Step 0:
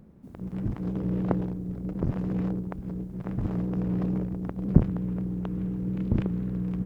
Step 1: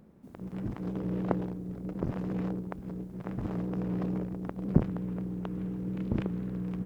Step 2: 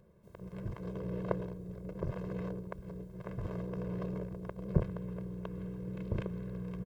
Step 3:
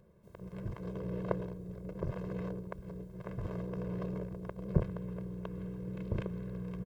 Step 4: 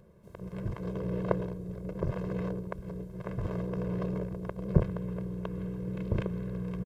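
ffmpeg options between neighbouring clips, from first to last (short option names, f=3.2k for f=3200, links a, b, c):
-af "lowshelf=f=180:g=-9.5"
-af "aecho=1:1:1.9:0.98,volume=-6dB"
-af anull
-af "aresample=32000,aresample=44100,volume=5dB"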